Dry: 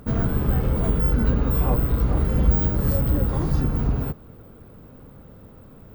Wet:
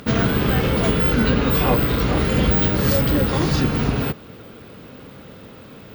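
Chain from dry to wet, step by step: frequency weighting D; trim +8 dB

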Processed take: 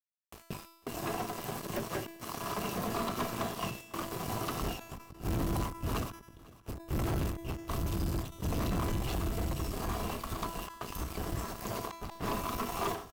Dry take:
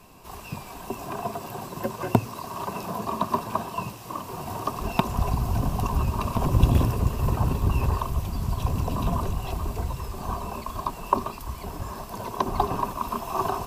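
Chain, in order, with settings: gate with hold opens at -28 dBFS; peaking EQ 940 Hz -6.5 dB 0.71 oct; inverted gate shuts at -13 dBFS, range -29 dB; fuzz box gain 32 dB, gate -42 dBFS; AM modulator 230 Hz, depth 45%; feedback comb 320 Hz, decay 0.86 s, mix 80%; on a send: feedback delay 520 ms, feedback 34%, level -23 dB; on the sum: speed mistake 24 fps film run at 25 fps; endings held to a fixed fall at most 110 dB/s

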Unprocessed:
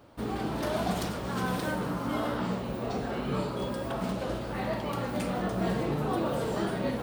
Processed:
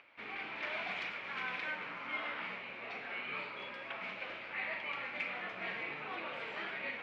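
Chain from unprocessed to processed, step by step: upward compressor, threshold -50 dBFS; band-pass filter 2.3 kHz, Q 6.2; distance through air 160 m; trim +12.5 dB

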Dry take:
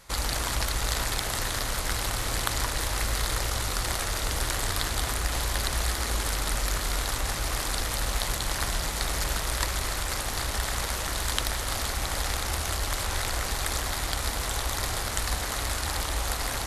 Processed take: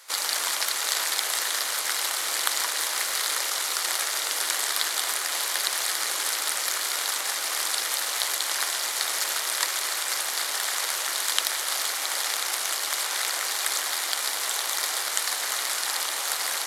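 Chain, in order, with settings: high-pass 330 Hz 24 dB/octave; tilt shelf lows -7 dB, about 790 Hz; band-stop 2.6 kHz, Q 22; harmony voices +3 st -13 dB; trim -1.5 dB

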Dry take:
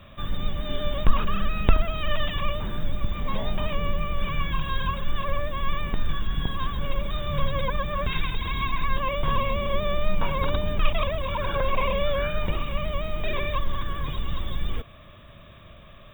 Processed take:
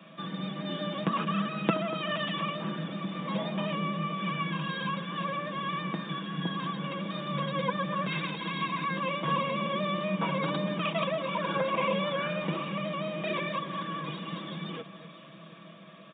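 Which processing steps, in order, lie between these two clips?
steep high-pass 170 Hz 48 dB/octave; bass shelf 260 Hz +9 dB; comb 6.1 ms, depth 61%; on a send: echo whose repeats swap between lows and highs 240 ms, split 1.8 kHz, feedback 74%, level -13 dB; on the sum: resampled via 8 kHz; trim -3.5 dB

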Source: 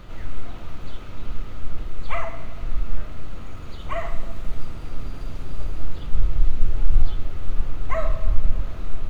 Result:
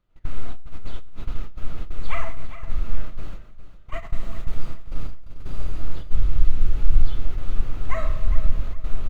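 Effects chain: dynamic bell 670 Hz, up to -5 dB, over -43 dBFS, Q 0.89; gate -21 dBFS, range -32 dB; on a send: feedback delay 407 ms, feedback 28%, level -13 dB; on the sum: Schroeder reverb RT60 0.64 s, combs from 27 ms, DRR 17.5 dB

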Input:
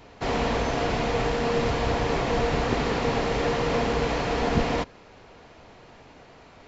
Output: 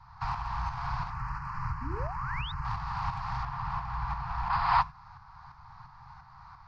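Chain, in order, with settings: FFT filter 180 Hz 0 dB, 460 Hz -18 dB, 810 Hz +12 dB, 3 kHz -23 dB, 4.7 kHz -7 dB, 7.8 kHz -28 dB; in parallel at -6 dB: saturation -26 dBFS, distortion -9 dB; on the sum: Chebyshev band-stop 140–1100 Hz, order 3; compression, threshold -30 dBFS, peak gain reduction 10 dB; tremolo saw up 2.9 Hz, depth 55%; 1.10–2.65 s: static phaser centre 1.5 kHz, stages 4; 3.43–4.53 s: treble shelf 3.9 kHz -9.5 dB; gated-style reverb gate 110 ms flat, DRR 11 dB; 1.81–2.52 s: painted sound rise 230–3900 Hz -43 dBFS; hum notches 50/100/150/200/250/300/350/400 Hz; 4.50–4.81 s: time-frequency box 540–5200 Hz +12 dB; trim +2.5 dB

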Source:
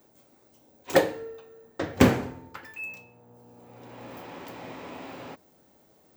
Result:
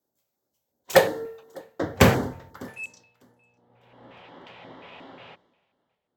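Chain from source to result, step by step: low-pass sweep 16 kHz -> 3.1 kHz, 2.61–3.20 s; on a send: thinning echo 601 ms, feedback 29%, high-pass 150 Hz, level -19 dB; on the sum: LFO notch square 2.8 Hz 290–2500 Hz; three bands expanded up and down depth 70%; trim -1 dB

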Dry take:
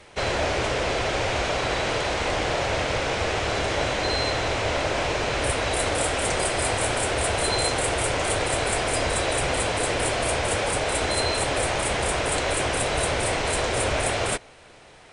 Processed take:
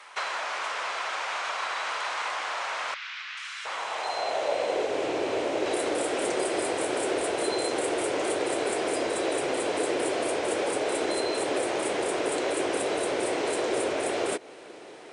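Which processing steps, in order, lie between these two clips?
compression 6:1, threshold -29 dBFS, peak gain reduction 9 dB; bass shelf 330 Hz +8 dB; 2.94–5.66 s: three bands offset in time mids, highs, lows 430/710 ms, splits 1.6/5.1 kHz; high-pass sweep 1.1 kHz -> 350 Hz, 3.78–5.06 s

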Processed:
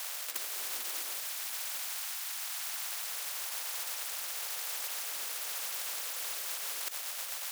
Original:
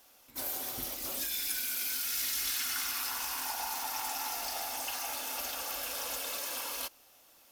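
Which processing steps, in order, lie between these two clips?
waveshaping leveller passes 2; compressor with a negative ratio -36 dBFS, ratio -0.5; rotary cabinet horn 1 Hz, later 8 Hz, at 5.92 s; high-pass 1.2 kHz 24 dB/octave; spectrum-flattening compressor 10:1; trim +4 dB

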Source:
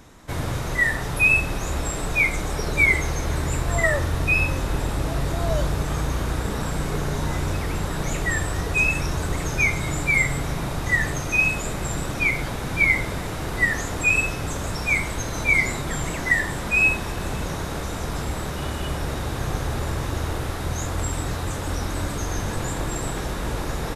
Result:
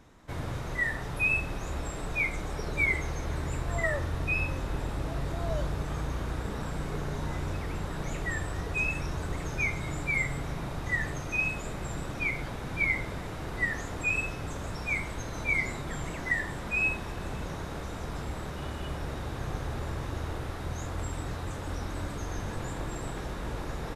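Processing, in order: treble shelf 5.5 kHz -8.5 dB; trim -8 dB

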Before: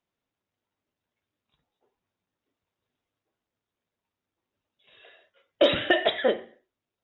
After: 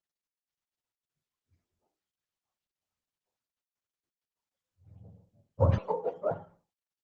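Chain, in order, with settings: spectrum inverted on a logarithmic axis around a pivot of 560 Hz; spectral noise reduction 17 dB; 5.78–6.31 s: high-pass 340 Hz 24 dB/octave; resampled via 16 kHz; trim -3.5 dB; Opus 16 kbps 48 kHz

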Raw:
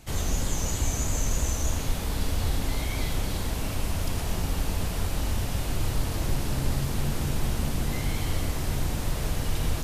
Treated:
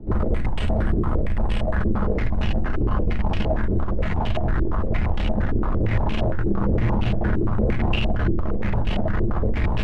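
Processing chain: bass shelf 110 Hz +11 dB; in parallel at 0 dB: peak limiter -16 dBFS, peak gain reduction 11 dB; on the sum: formant shift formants +5 st; frequency shift -16 Hz; overload inside the chain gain 20 dB; reverberation RT60 0.45 s, pre-delay 5 ms, DRR 4 dB; step-sequenced low-pass 8.7 Hz 380–2800 Hz

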